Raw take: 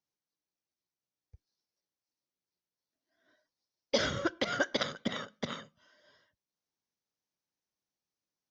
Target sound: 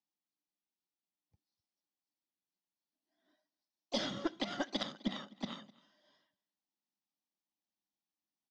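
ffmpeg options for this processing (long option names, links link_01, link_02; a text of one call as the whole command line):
ffmpeg -i in.wav -filter_complex "[0:a]highpass=180,equalizer=frequency=200:width_type=q:width=4:gain=9,equalizer=frequency=300:width_type=q:width=4:gain=7,equalizer=frequency=460:width_type=q:width=4:gain=-10,equalizer=frequency=810:width_type=q:width=4:gain=6,equalizer=frequency=1500:width_type=q:width=4:gain=-8,equalizer=frequency=3400:width_type=q:width=4:gain=3,lowpass=frequency=6000:width=0.5412,lowpass=frequency=6000:width=1.3066,bandreject=frequency=2200:width=12,asplit=2[link_01][link_02];[link_02]asetrate=55563,aresample=44100,atempo=0.793701,volume=-15dB[link_03];[link_01][link_03]amix=inputs=2:normalize=0,aecho=1:1:255:0.0708,aeval=exprs='0.266*(cos(1*acos(clip(val(0)/0.266,-1,1)))-cos(1*PI/2))+0.0376*(cos(2*acos(clip(val(0)/0.266,-1,1)))-cos(2*PI/2))':channel_layout=same,volume=-6dB" out.wav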